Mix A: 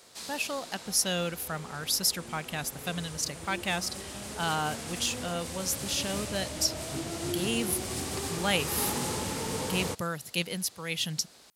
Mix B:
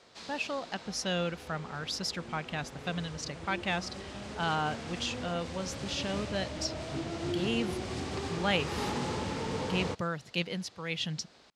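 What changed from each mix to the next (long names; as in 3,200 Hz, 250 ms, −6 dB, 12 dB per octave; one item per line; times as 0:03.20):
master: add high-frequency loss of the air 140 metres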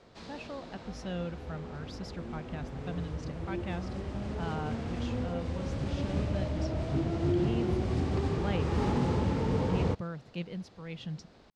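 speech −9.0 dB
master: add spectral tilt −3 dB per octave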